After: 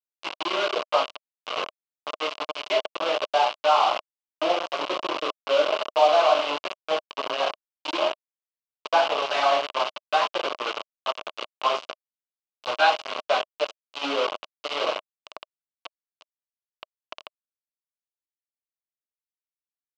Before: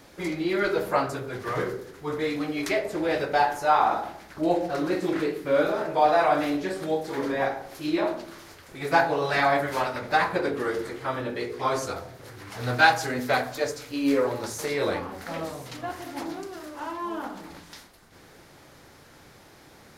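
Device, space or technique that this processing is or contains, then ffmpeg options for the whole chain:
hand-held game console: -af "acrusher=bits=3:mix=0:aa=0.000001,highpass=460,equalizer=f=620:t=q:w=4:g=9,equalizer=f=1.1k:t=q:w=4:g=8,equalizer=f=1.8k:t=q:w=4:g=-9,equalizer=f=2.9k:t=q:w=4:g=9,lowpass=f=4.9k:w=0.5412,lowpass=f=4.9k:w=1.3066,volume=-3dB"

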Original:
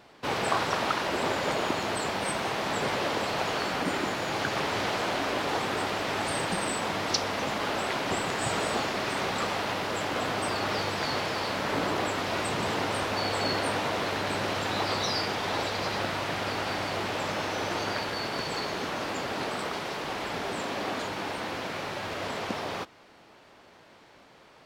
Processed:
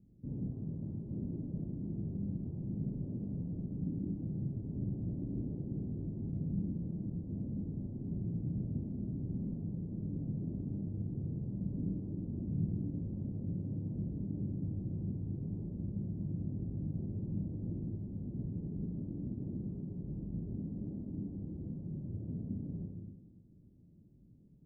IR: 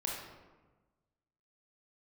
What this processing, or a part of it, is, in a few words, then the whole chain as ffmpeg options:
club heard from the street: -filter_complex "[0:a]asettb=1/sr,asplit=3[a][b][c];[a]atrim=end=4.624[d];[b]atrim=start=4.62:end=5.95,asetpts=PTS-STARTPTS,afade=t=in:d=0.004:c=qsin,afade=t=out:st=1.326:d=0.004:c=qsin,lowpass=1.3k[e];[c]atrim=start=5.946[f];[d][e]acrossfade=d=0.004:c1=hsin:c2=qsin[g];[g][f]acrossfade=d=0.004:c1=qsin:c2=hsin,alimiter=limit=-21dB:level=0:latency=1:release=163,lowpass=f=210:w=0.5412,lowpass=f=210:w=1.3066[h];[1:a]atrim=start_sample=2205[i];[h][i]afir=irnorm=-1:irlink=0,volume=3dB"

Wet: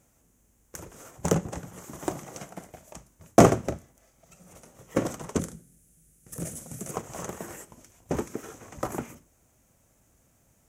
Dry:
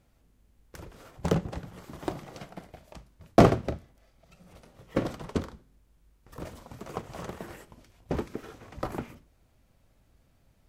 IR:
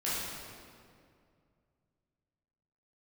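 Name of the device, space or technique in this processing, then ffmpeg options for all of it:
budget condenser microphone: -filter_complex "[0:a]asettb=1/sr,asplit=3[a][b][c];[a]atrim=end=5.394[d];[b]atrim=start=5.39:end=6.91,asetpts=PTS-STARTPTS,afade=t=in:d=0.004:c=qsin,afade=t=out:st=1.516:d=0.004:c=qsin,equalizer=f=160:t=o:w=0.67:g=10,equalizer=f=1k:t=o:w=0.67:g=-12,equalizer=f=10k:t=o:w=0.67:g=12[e];[c]atrim=start=6.906[f];[d][e]acrossfade=d=0.004:c1=hsin:c2=qsin[g];[g][f]acrossfade=d=0.004:c1=qsin:c2=hsin,highpass=f=110:p=1,highshelf=f=5.4k:t=q:w=3:g=7,volume=2.5dB"

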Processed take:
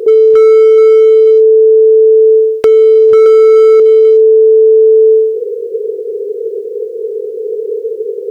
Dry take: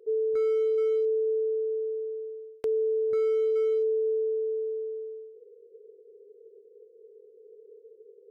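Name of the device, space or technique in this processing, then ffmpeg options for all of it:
loud club master: -filter_complex "[0:a]asettb=1/sr,asplit=3[a][b][c];[a]atrim=end=3.244[d];[b]atrim=start=3.24:end=3.8,asetpts=PTS-STARTPTS,afade=t=in:d=0.004:c=qsin,afade=t=out:st=0.556:d=0.004:c=qsin,asplit=2[e][f];[f]adelay=20,volume=-3.5dB[g];[e][g]amix=inputs=2:normalize=0,atrim=end_sample=24696[h];[c]atrim=start=3.796[i];[d][h]acrossfade=d=0.004:c1=hsin:c2=qsin[j];[j][i]acrossfade=d=0.004:c1=qsin:c2=hsin,acompressor=threshold=-28dB:ratio=2.5,asoftclip=type=hard:threshold=-26dB,alimiter=level_in=35dB:limit=-1dB:release=50:level=0:latency=1,volume=-1dB"

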